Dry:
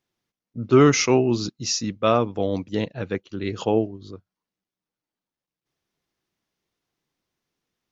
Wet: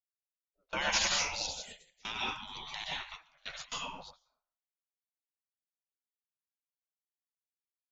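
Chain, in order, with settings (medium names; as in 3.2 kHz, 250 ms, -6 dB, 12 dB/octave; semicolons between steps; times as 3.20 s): 1.02–2.47 s: static phaser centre 480 Hz, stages 4; plate-style reverb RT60 0.57 s, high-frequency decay 0.6×, pre-delay 110 ms, DRR -3.5 dB; spectral gate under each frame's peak -25 dB weak; gate with hold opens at -29 dBFS; trim -1 dB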